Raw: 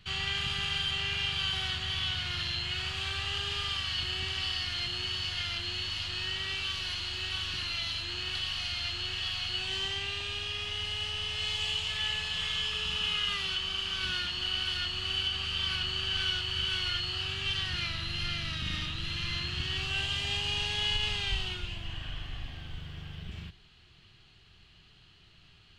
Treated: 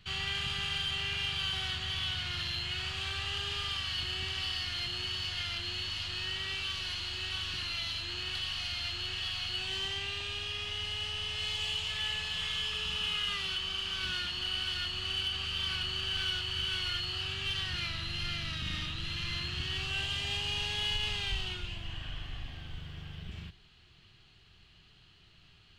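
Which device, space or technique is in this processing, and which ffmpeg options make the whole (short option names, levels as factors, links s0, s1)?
parallel distortion: -filter_complex "[0:a]asplit=2[s0][s1];[s1]asoftclip=type=hard:threshold=0.0282,volume=0.398[s2];[s0][s2]amix=inputs=2:normalize=0,volume=0.596"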